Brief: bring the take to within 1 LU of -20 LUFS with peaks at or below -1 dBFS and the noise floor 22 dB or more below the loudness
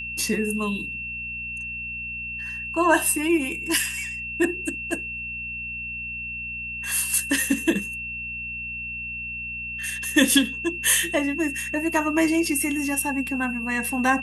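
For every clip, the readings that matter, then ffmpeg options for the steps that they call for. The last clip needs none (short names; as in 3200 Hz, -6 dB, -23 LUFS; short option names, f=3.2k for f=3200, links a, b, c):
hum 60 Hz; harmonics up to 240 Hz; hum level -41 dBFS; steady tone 2700 Hz; tone level -30 dBFS; loudness -24.5 LUFS; peak -5.0 dBFS; loudness target -20.0 LUFS
-> -af "bandreject=f=60:t=h:w=4,bandreject=f=120:t=h:w=4,bandreject=f=180:t=h:w=4,bandreject=f=240:t=h:w=4"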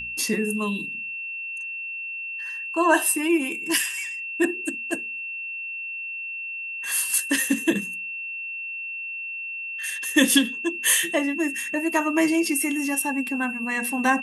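hum none; steady tone 2700 Hz; tone level -30 dBFS
-> -af "bandreject=f=2.7k:w=30"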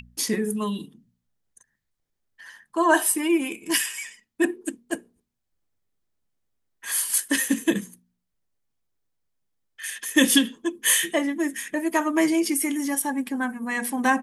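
steady tone none; loudness -23.5 LUFS; peak -5.5 dBFS; loudness target -20.0 LUFS
-> -af "volume=3.5dB"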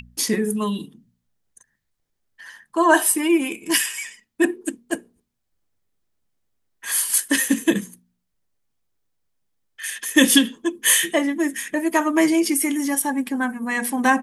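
loudness -20.0 LUFS; peak -2.0 dBFS; noise floor -75 dBFS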